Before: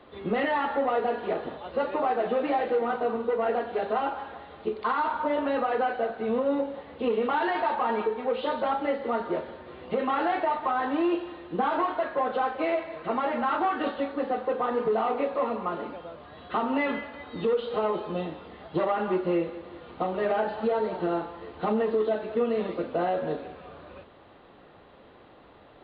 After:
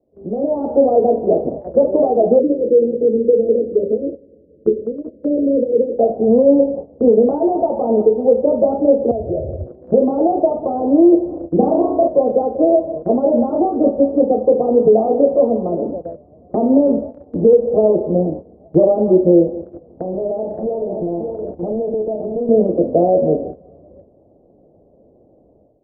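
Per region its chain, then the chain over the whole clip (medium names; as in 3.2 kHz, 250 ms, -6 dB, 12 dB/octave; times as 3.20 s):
2.39–5.99 s: steep low-pass 530 Hz 72 dB/octave + bass shelf 150 Hz -7 dB
9.11–9.66 s: steep low-pass 790 Hz 72 dB/octave + resonant low shelf 150 Hz +11.5 dB, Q 3 + compression 2.5:1, threshold -34 dBFS
11.27–12.08 s: gate with hold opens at -35 dBFS, closes at -41 dBFS + flutter echo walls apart 6.1 m, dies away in 0.57 s
19.47–22.49 s: delay 569 ms -11 dB + compression 3:1, threshold -36 dBFS + loudspeaker Doppler distortion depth 0.43 ms
whole clip: elliptic low-pass 640 Hz, stop band 70 dB; gate -42 dBFS, range -13 dB; level rider gain up to 15.5 dB; trim +1.5 dB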